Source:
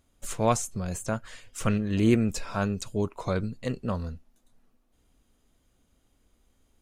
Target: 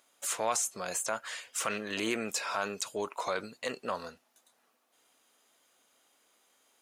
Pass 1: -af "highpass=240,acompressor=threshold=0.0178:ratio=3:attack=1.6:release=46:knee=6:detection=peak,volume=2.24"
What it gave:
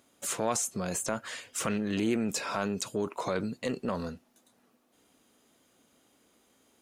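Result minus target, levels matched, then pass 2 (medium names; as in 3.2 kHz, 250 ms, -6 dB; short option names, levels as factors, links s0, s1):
250 Hz band +7.5 dB
-af "highpass=670,acompressor=threshold=0.0178:ratio=3:attack=1.6:release=46:knee=6:detection=peak,volume=2.24"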